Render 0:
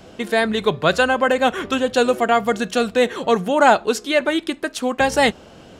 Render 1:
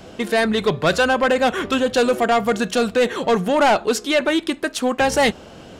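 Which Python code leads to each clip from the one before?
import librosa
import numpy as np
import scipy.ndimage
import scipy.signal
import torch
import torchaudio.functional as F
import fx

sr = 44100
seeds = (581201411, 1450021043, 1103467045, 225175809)

y = 10.0 ** (-13.5 / 20.0) * np.tanh(x / 10.0 ** (-13.5 / 20.0))
y = F.gain(torch.from_numpy(y), 3.0).numpy()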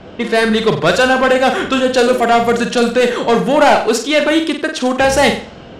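y = fx.room_flutter(x, sr, wall_m=8.0, rt60_s=0.42)
y = fx.env_lowpass(y, sr, base_hz=2900.0, full_db=-13.0)
y = F.gain(torch.from_numpy(y), 4.5).numpy()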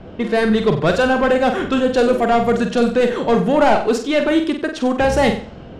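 y = fx.tilt_eq(x, sr, slope=-2.0)
y = F.gain(torch.from_numpy(y), -5.0).numpy()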